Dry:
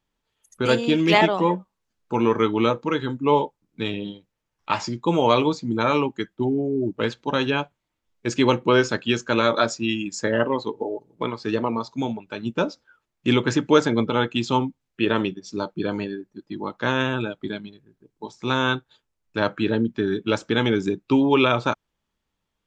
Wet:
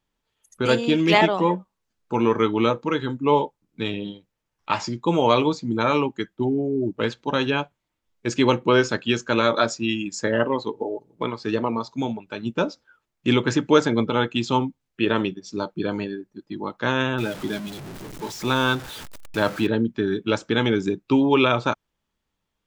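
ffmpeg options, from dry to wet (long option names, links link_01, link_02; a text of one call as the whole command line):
ffmpeg -i in.wav -filter_complex "[0:a]asettb=1/sr,asplit=3[link_01][link_02][link_03];[link_01]atrim=end=17.184[link_04];[link_02]atrim=start=17.18:end=19.67,asetpts=PTS-STARTPTS,afade=type=in:duration=0.004:curve=qsin,afade=type=out:start_time=2.486:duration=0.004:curve=qsin,aeval=exprs='val(0)+0.5*0.0266*sgn(val(0))':channel_layout=same[link_05];[link_03]atrim=start=19.666[link_06];[link_04][link_05]acrossfade=duration=0.004:curve1=hsin:curve2=qsin[link_07];[link_07][link_06]acrossfade=duration=0.004:curve1=qsin:curve2=hsin" out.wav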